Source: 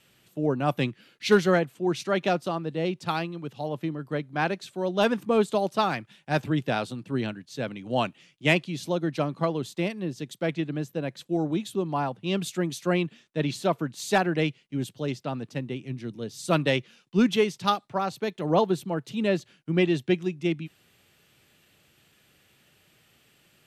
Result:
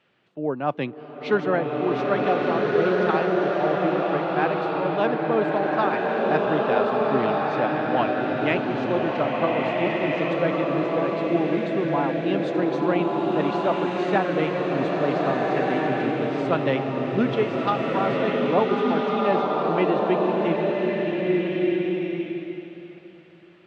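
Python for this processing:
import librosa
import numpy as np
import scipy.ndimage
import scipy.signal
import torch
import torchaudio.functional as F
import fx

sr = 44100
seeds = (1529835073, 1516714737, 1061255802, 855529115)

p1 = fx.highpass(x, sr, hz=570.0, slope=6)
p2 = fx.high_shelf(p1, sr, hz=5600.0, db=-10.0)
p3 = fx.rider(p2, sr, range_db=10, speed_s=0.5)
p4 = p2 + F.gain(torch.from_numpy(p3), 1.0).numpy()
p5 = fx.spacing_loss(p4, sr, db_at_10k=32)
y = fx.rev_bloom(p5, sr, seeds[0], attack_ms=1650, drr_db=-3.5)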